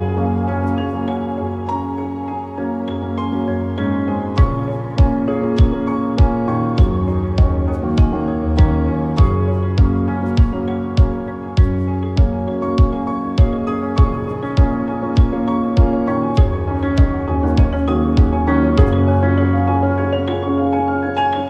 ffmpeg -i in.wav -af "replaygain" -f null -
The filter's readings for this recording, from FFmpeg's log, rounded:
track_gain = +1.6 dB
track_peak = 0.597